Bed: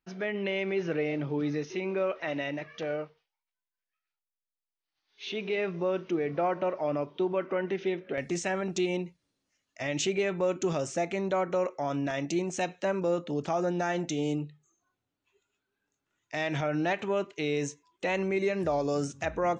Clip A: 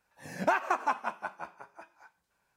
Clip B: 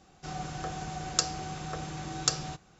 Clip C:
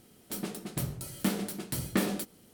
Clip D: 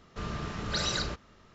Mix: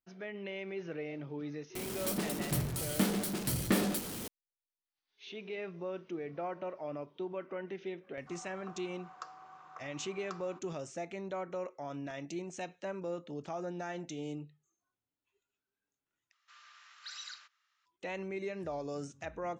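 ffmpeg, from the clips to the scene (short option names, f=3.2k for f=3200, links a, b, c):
-filter_complex "[0:a]volume=-10.5dB[a];[3:a]aeval=exprs='val(0)+0.5*0.02*sgn(val(0))':c=same[b];[2:a]bandpass=f=1.1k:t=q:w=4.9:csg=0[c];[4:a]highpass=f=1.3k:w=0.5412,highpass=f=1.3k:w=1.3066[d];[a]asplit=2[e][f];[e]atrim=end=16.324[g];[d]atrim=end=1.54,asetpts=PTS-STARTPTS,volume=-13.5dB[h];[f]atrim=start=17.856[i];[b]atrim=end=2.53,asetpts=PTS-STARTPTS,volume=-2dB,afade=t=in:d=0.004:c=hsin,afade=t=out:st=2.526:d=0.004:c=hsin,adelay=1750[j];[c]atrim=end=2.79,asetpts=PTS-STARTPTS,volume=-2.5dB,afade=t=in:d=0.004:c=hsin,afade=t=out:st=2.786:d=0.004:c=hsin,adelay=8030[k];[g][h]acrossfade=d=0.004:c1=hsin:c2=hsin[l];[l][i]acrossfade=d=0.004:c1=hsin:c2=hsin[m];[m][j][k]amix=inputs=3:normalize=0"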